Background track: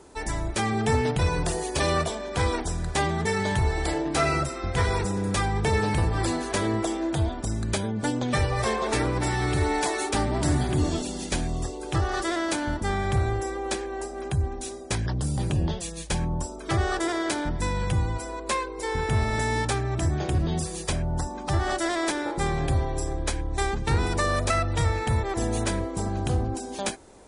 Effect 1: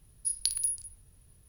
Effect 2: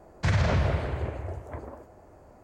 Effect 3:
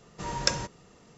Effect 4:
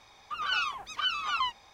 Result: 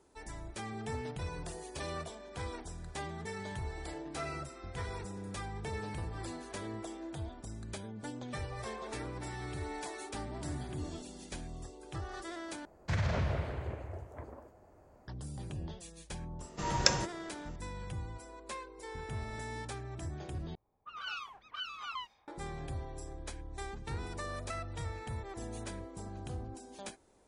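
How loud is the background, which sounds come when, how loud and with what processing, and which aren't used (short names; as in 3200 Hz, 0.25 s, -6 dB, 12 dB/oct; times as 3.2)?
background track -16 dB
12.65 replace with 2 -8 dB
16.39 add 3 -0.5 dB
20.55 replace with 4 -11.5 dB + low-pass opened by the level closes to 360 Hz, open at -29.5 dBFS
not used: 1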